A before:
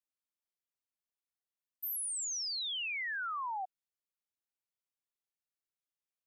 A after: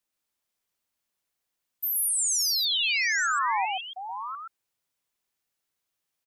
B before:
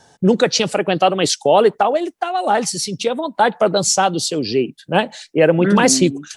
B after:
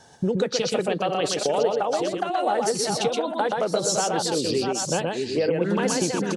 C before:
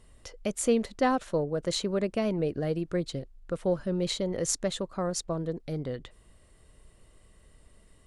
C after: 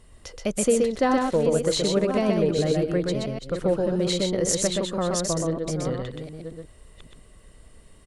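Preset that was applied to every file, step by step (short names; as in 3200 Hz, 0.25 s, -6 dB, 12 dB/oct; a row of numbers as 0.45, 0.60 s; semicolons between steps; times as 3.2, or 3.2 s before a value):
reverse delay 0.544 s, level -8.5 dB; dynamic EQ 470 Hz, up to +6 dB, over -30 dBFS, Q 4.4; compressor 5:1, threshold -21 dBFS; on a send: echo 0.125 s -3 dB; on the sum: match loudness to -24 LUFS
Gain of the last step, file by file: +9.5, -1.5, +4.5 dB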